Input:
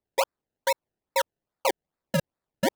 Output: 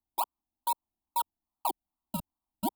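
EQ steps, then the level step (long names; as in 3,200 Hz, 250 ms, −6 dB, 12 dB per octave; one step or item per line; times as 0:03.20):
parametric band 2,400 Hz −9.5 dB 2.1 octaves
phaser with its sweep stopped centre 530 Hz, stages 6
phaser with its sweep stopped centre 1,700 Hz, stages 6
+2.5 dB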